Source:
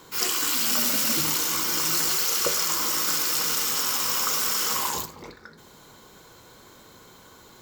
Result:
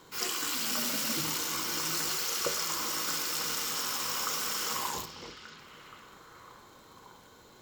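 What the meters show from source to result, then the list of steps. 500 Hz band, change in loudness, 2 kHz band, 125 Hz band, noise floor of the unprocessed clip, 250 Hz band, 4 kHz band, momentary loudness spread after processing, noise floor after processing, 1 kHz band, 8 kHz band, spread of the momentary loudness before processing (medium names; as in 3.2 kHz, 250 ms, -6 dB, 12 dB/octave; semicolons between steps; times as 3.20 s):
-5.5 dB, -8.5 dB, -5.5 dB, -5.5 dB, -51 dBFS, -5.5 dB, -6.5 dB, 16 LU, -56 dBFS, -5.5 dB, -8.0 dB, 3 LU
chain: treble shelf 7.8 kHz -5.5 dB; repeats whose band climbs or falls 552 ms, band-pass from 3.7 kHz, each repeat -0.7 oct, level -10 dB; crackle 37 per s -41 dBFS; trim -5.5 dB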